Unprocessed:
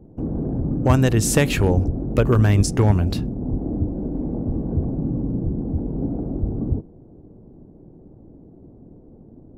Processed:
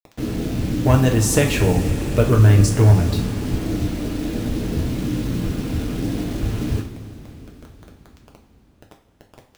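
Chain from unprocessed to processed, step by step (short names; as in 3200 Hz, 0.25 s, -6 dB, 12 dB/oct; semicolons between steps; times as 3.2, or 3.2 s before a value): bit-crush 6-bit; two-slope reverb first 0.37 s, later 4.9 s, from -18 dB, DRR 0.5 dB; gain -1.5 dB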